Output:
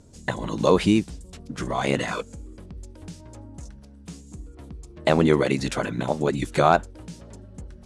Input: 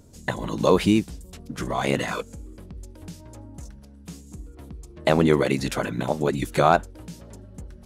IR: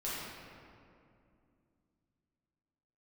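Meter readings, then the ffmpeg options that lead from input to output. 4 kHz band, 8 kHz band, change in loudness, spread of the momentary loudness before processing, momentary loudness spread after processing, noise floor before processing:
0.0 dB, −0.5 dB, 0.0 dB, 23 LU, 23 LU, −47 dBFS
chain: -af "lowpass=frequency=10000:width=0.5412,lowpass=frequency=10000:width=1.3066"

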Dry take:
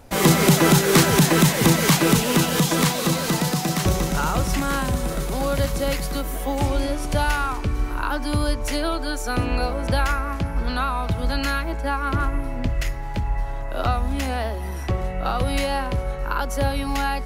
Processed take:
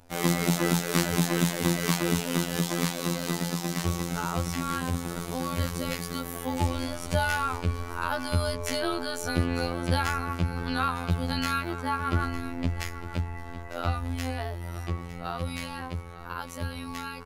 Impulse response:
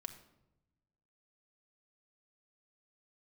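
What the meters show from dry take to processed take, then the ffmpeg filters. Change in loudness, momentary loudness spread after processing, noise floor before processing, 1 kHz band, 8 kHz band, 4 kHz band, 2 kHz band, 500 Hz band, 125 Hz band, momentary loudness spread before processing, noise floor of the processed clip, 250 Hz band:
−7.5 dB, 10 LU, −28 dBFS, −7.0 dB, −8.5 dB, −7.5 dB, −6.5 dB, −8.5 dB, −6.5 dB, 11 LU, −39 dBFS, −7.0 dB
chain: -af "dynaudnorm=framelen=270:gausssize=31:maxgain=11.5dB,aecho=1:1:905:0.178,asoftclip=type=hard:threshold=-5.5dB,afftfilt=real='hypot(re,im)*cos(PI*b)':imag='0':win_size=2048:overlap=0.75,volume=-6.5dB"

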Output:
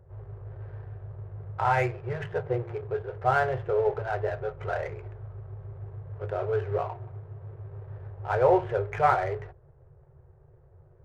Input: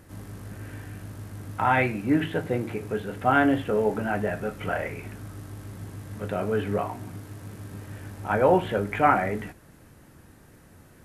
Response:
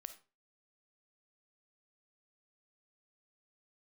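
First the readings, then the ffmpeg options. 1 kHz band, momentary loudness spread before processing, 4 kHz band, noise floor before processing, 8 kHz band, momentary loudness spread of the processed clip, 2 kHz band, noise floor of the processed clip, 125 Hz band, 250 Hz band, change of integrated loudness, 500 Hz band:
−2.0 dB, 19 LU, can't be measured, −53 dBFS, below −10 dB, 18 LU, −5.0 dB, −57 dBFS, −1.0 dB, −12.5 dB, −2.5 dB, −1.0 dB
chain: -af "adynamicsmooth=sensitivity=6.5:basefreq=570,afftfilt=real='re*(1-between(b*sr/4096,160,350))':imag='im*(1-between(b*sr/4096,160,350))':win_size=4096:overlap=0.75,lowpass=frequency=1200:poles=1"

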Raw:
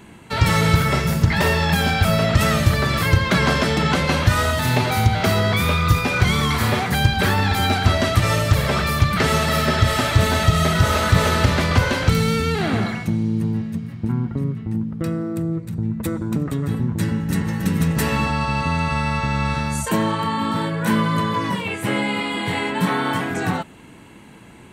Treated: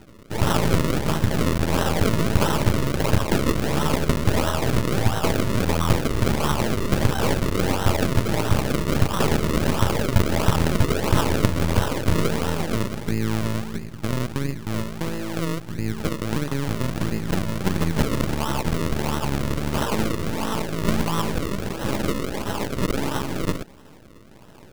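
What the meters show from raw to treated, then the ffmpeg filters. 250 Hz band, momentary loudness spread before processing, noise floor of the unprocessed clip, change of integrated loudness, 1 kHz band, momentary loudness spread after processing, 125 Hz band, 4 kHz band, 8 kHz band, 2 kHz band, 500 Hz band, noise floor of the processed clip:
−2.5 dB, 7 LU, −43 dBFS, −4.0 dB, −5.5 dB, 6 LU, −4.5 dB, −6.0 dB, −2.0 dB, −8.5 dB, −1.5 dB, −45 dBFS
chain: -af "aeval=exprs='max(val(0),0)':channel_layout=same,aemphasis=mode=production:type=50kf,acrusher=samples=38:mix=1:aa=0.000001:lfo=1:lforange=38:lforate=1.5,bandreject=frequency=720:width=12"

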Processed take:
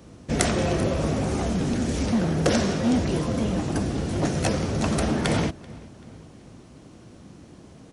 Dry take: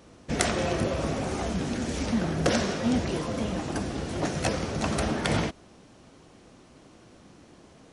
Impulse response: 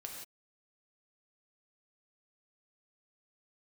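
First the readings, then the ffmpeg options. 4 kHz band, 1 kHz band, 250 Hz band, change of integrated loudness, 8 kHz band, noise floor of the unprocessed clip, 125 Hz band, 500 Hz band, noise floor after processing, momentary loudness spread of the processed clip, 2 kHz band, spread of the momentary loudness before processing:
+1.5 dB, +1.5 dB, +4.5 dB, +4.0 dB, +3.0 dB, −54 dBFS, +5.5 dB, +3.0 dB, −48 dBFS, 4 LU, +0.5 dB, 5 LU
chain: -filter_complex "[0:a]equalizer=frequency=110:width=0.36:gain=9.5,asplit=2[link_01][link_02];[link_02]adelay=385,lowpass=frequency=4400:poles=1,volume=-23dB,asplit=2[link_03][link_04];[link_04]adelay=385,lowpass=frequency=4400:poles=1,volume=0.51,asplit=2[link_05][link_06];[link_06]adelay=385,lowpass=frequency=4400:poles=1,volume=0.51[link_07];[link_01][link_03][link_05][link_07]amix=inputs=4:normalize=0,acrossover=split=270[link_08][link_09];[link_08]volume=24.5dB,asoftclip=hard,volume=-24.5dB[link_10];[link_10][link_09]amix=inputs=2:normalize=0,highshelf=frequency=6500:gain=5"

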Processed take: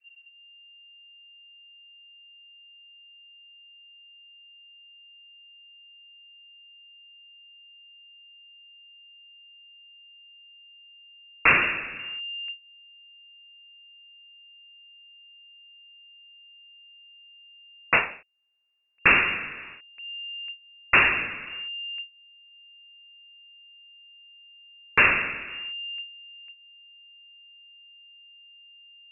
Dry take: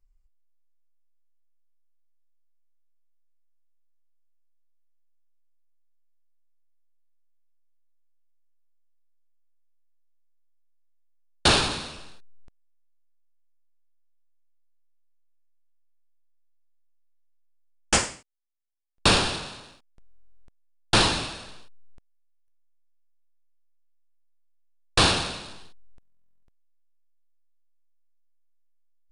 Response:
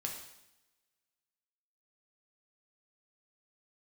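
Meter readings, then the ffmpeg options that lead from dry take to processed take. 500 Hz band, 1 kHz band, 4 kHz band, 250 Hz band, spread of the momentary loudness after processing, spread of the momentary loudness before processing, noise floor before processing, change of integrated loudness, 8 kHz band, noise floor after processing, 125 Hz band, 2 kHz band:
−5.0 dB, −0.5 dB, can't be measured, −7.0 dB, 22 LU, 16 LU, −62 dBFS, −1.0 dB, below −40 dB, −54 dBFS, −10.0 dB, +8.5 dB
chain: -filter_complex "[0:a]lowpass=frequency=2400:width_type=q:width=0.5098,lowpass=frequency=2400:width_type=q:width=0.6013,lowpass=frequency=2400:width_type=q:width=0.9,lowpass=frequency=2400:width_type=q:width=2.563,afreqshift=-2800,adynamicequalizer=threshold=0.00224:dfrequency=890:dqfactor=1.5:tfrequency=890:tqfactor=1.5:attack=5:release=100:ratio=0.375:range=4:mode=cutabove:tftype=bell,asplit=2[link_01][link_02];[link_02]acompressor=threshold=-46dB:ratio=6,volume=2dB[link_03];[link_01][link_03]amix=inputs=2:normalize=0,volume=3dB"

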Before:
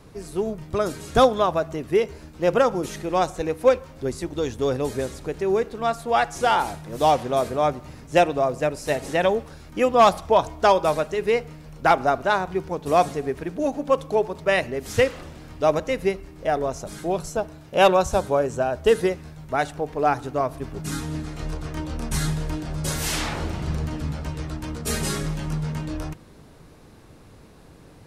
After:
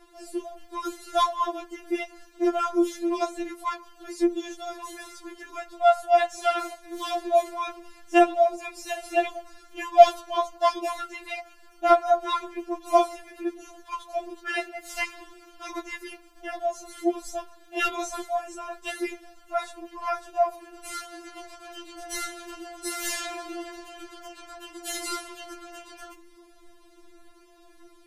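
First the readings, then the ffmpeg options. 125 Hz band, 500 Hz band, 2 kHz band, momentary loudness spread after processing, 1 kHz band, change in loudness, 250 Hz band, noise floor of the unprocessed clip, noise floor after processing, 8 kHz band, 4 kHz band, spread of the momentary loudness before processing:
below −35 dB, −5.5 dB, −5.0 dB, 21 LU, −2.5 dB, −3.5 dB, −3.5 dB, −48 dBFS, −54 dBFS, −3.5 dB, −4.0 dB, 12 LU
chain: -af "flanger=delay=8.5:depth=8.3:regen=51:speed=1.4:shape=sinusoidal,afftfilt=real='re*4*eq(mod(b,16),0)':imag='im*4*eq(mod(b,16),0)':win_size=2048:overlap=0.75,volume=2.5dB"

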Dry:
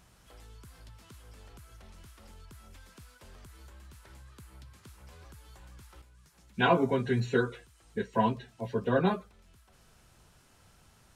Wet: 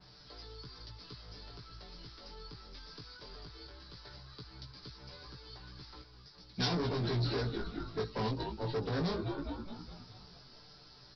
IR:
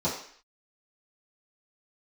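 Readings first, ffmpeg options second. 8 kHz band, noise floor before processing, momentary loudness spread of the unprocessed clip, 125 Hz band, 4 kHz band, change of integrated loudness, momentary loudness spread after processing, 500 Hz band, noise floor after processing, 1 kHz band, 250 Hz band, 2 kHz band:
−3.0 dB, −62 dBFS, 13 LU, −1.0 dB, +3.5 dB, −10.0 dB, 19 LU, −7.0 dB, −57 dBFS, −9.5 dB, −6.0 dB, −9.5 dB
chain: -filter_complex "[0:a]equalizer=frequency=400:width_type=o:width=0.64:gain=5.5,aecho=1:1:6.8:0.63,asplit=2[link_01][link_02];[link_02]asplit=7[link_03][link_04][link_05][link_06][link_07][link_08][link_09];[link_03]adelay=209,afreqshift=-58,volume=-14dB[link_10];[link_04]adelay=418,afreqshift=-116,volume=-18.3dB[link_11];[link_05]adelay=627,afreqshift=-174,volume=-22.6dB[link_12];[link_06]adelay=836,afreqshift=-232,volume=-26.9dB[link_13];[link_07]adelay=1045,afreqshift=-290,volume=-31.2dB[link_14];[link_08]adelay=1254,afreqshift=-348,volume=-35.5dB[link_15];[link_09]adelay=1463,afreqshift=-406,volume=-39.8dB[link_16];[link_10][link_11][link_12][link_13][link_14][link_15][link_16]amix=inputs=7:normalize=0[link_17];[link_01][link_17]amix=inputs=2:normalize=0,acrossover=split=330|3000[link_18][link_19][link_20];[link_19]acompressor=threshold=-35dB:ratio=3[link_21];[link_18][link_21][link_20]amix=inputs=3:normalize=0,aresample=11025,volume=31.5dB,asoftclip=hard,volume=-31.5dB,aresample=44100,aexciter=amount=8.9:drive=5.8:freq=4200,flanger=delay=15.5:depth=2.9:speed=0.18,adynamicequalizer=threshold=0.00141:dfrequency=3900:dqfactor=0.7:tfrequency=3900:tqfactor=0.7:attack=5:release=100:ratio=0.375:range=1.5:mode=cutabove:tftype=highshelf,volume=2.5dB"

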